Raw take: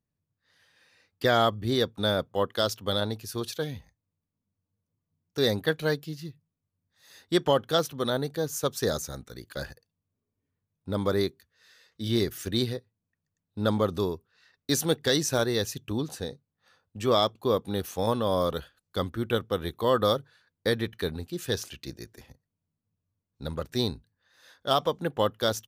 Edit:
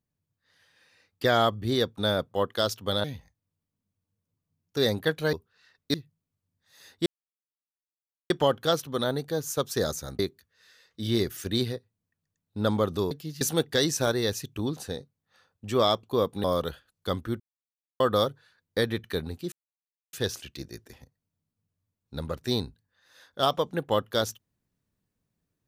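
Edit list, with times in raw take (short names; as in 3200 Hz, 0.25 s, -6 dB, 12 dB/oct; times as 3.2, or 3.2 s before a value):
3.04–3.65 cut
5.94–6.24 swap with 14.12–14.73
7.36 insert silence 1.24 s
9.25–11.2 cut
17.76–18.33 cut
19.29–19.89 mute
21.41 insert silence 0.61 s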